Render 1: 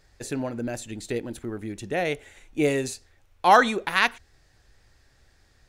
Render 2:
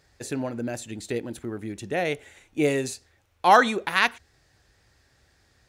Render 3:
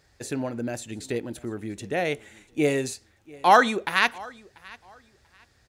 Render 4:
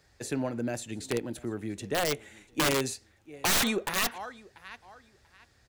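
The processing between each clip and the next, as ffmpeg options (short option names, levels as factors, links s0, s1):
-af "highpass=64"
-af "aecho=1:1:689|1378:0.0708|0.017"
-filter_complex "[0:a]aeval=exprs='0.668*(cos(1*acos(clip(val(0)/0.668,-1,1)))-cos(1*PI/2))+0.119*(cos(2*acos(clip(val(0)/0.668,-1,1)))-cos(2*PI/2))+0.0376*(cos(3*acos(clip(val(0)/0.668,-1,1)))-cos(3*PI/2))':c=same,acrossover=split=160|3800[s0][s1][s2];[s1]aeval=exprs='(mod(10*val(0)+1,2)-1)/10':c=same[s3];[s0][s3][s2]amix=inputs=3:normalize=0"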